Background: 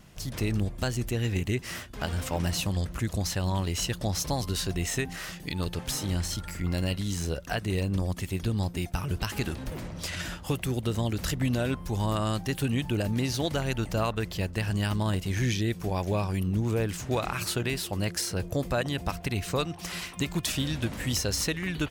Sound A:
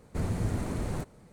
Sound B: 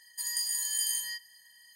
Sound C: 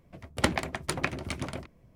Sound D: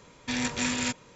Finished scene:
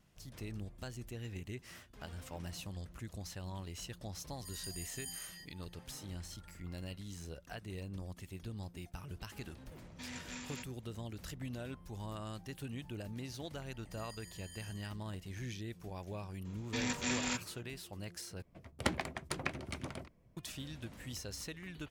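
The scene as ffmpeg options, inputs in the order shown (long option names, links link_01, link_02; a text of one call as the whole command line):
ffmpeg -i bed.wav -i cue0.wav -i cue1.wav -i cue2.wav -i cue3.wav -filter_complex "[2:a]asplit=2[link_01][link_02];[4:a]asplit=2[link_03][link_04];[0:a]volume=-16dB[link_05];[link_02]lowpass=frequency=1700:poles=1[link_06];[link_05]asplit=2[link_07][link_08];[link_07]atrim=end=18.424[link_09];[3:a]atrim=end=1.95,asetpts=PTS-STARTPTS,volume=-8dB[link_10];[link_08]atrim=start=20.366[link_11];[link_01]atrim=end=1.75,asetpts=PTS-STARTPTS,volume=-15.5dB,afade=type=in:duration=0.004:curve=hsin,afade=type=out:start_time=1.746:duration=0.004:curve=hsin,adelay=4270[link_12];[link_03]atrim=end=1.15,asetpts=PTS-STARTPTS,volume=-18dB,afade=type=in:duration=0.004:curve=hsin,afade=type=out:start_time=1.146:duration=0.004:curve=hsin,adelay=9710[link_13];[link_06]atrim=end=1.75,asetpts=PTS-STARTPTS,volume=-12.5dB,afade=type=in:duration=0.004:curve=hsin,afade=type=out:start_time=1.746:duration=0.004:curve=hsin,adelay=13730[link_14];[link_04]atrim=end=1.15,asetpts=PTS-STARTPTS,volume=-7dB,afade=type=in:duration=0.004:curve=hsin,afade=type=out:start_time=1.146:duration=0.004:curve=hsin,adelay=16450[link_15];[link_09][link_10]acrossfade=duration=0.004:curve1=hsin:curve2=hsin[link_16];[link_16][link_11]acrossfade=duration=0.004:curve1=hsin:curve2=hsin[link_17];[link_17][link_12][link_13][link_14][link_15]amix=inputs=5:normalize=0" out.wav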